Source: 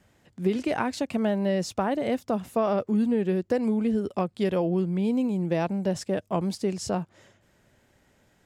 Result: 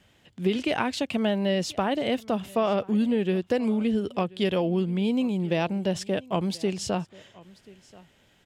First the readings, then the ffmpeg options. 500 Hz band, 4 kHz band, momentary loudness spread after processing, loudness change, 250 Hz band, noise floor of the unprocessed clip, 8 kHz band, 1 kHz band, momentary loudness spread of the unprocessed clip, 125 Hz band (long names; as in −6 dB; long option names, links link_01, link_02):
0.0 dB, +7.0 dB, 5 LU, +0.5 dB, 0.0 dB, −65 dBFS, +1.0 dB, +0.5 dB, 5 LU, 0.0 dB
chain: -af "equalizer=frequency=3100:width_type=o:width=0.8:gain=10.5,aecho=1:1:1033:0.0708"